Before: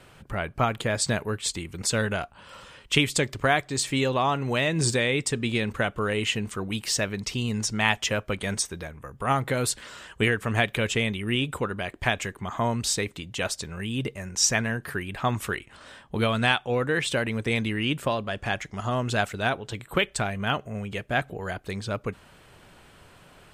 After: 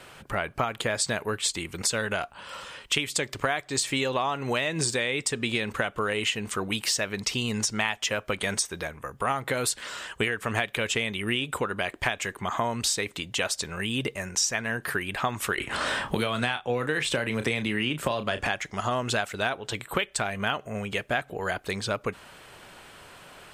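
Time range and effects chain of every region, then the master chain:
15.58–18.47 low shelf 330 Hz +4.5 dB + doubler 33 ms -11 dB + three-band squash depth 70%
whole clip: low shelf 280 Hz -10.5 dB; compressor, threshold -30 dBFS; gain +6.5 dB

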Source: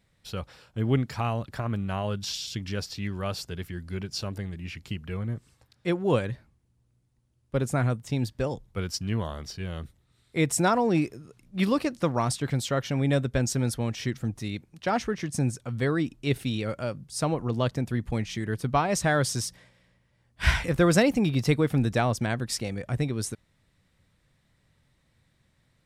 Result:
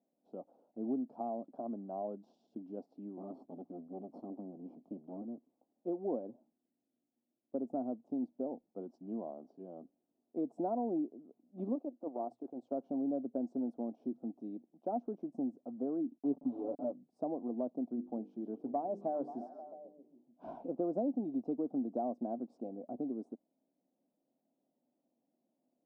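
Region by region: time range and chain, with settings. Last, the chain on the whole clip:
3.17–5.22 minimum comb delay 0.93 ms + low shelf 330 Hz +7.5 dB
11.75–12.72 resonant low shelf 280 Hz -6.5 dB, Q 1.5 + notches 60/120/180 Hz + transient shaper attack -12 dB, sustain -8 dB
16.18–16.92 level-crossing sampler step -31.5 dBFS + low shelf 160 Hz +9.5 dB + comb 7 ms, depth 100%
17.93–20.55 LPF 9500 Hz + notches 50/100/150/200/250/300/350/400/450/500 Hz + delay with a stepping band-pass 0.132 s, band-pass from 3800 Hz, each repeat -0.7 oct, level -6 dB
whole clip: elliptic band-pass 250–710 Hz, stop band 50 dB; bell 450 Hz -11.5 dB 0.89 oct; compressor 2.5:1, threshold -35 dBFS; gain +1.5 dB

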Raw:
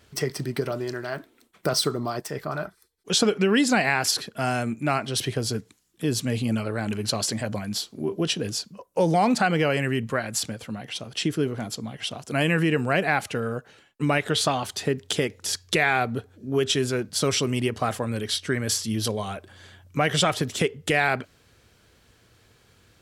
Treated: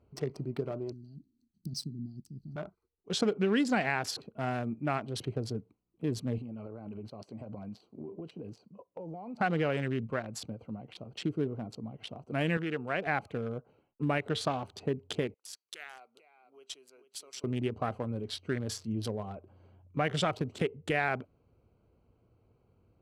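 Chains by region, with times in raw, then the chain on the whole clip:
0.92–2.56 elliptic band-stop 240–4600 Hz + mismatched tape noise reduction encoder only
6.38–9.41 HPF 130 Hz 6 dB/oct + compressor 16:1, threshold -30 dBFS
12.57–13.07 LPF 1900 Hz 6 dB/oct + tilt +3 dB/oct
15.34–17.44 HPF 330 Hz + differentiator + echo 0.444 s -9.5 dB
whole clip: Wiener smoothing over 25 samples; high shelf 4900 Hz -11 dB; gain -6.5 dB

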